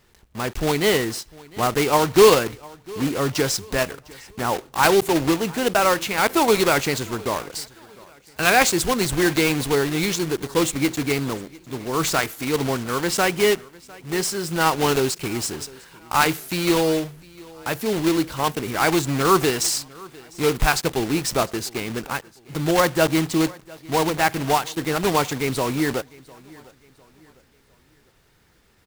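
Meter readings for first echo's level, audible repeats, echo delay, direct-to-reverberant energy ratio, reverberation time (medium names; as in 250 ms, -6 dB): -23.0 dB, 2, 703 ms, no reverb, no reverb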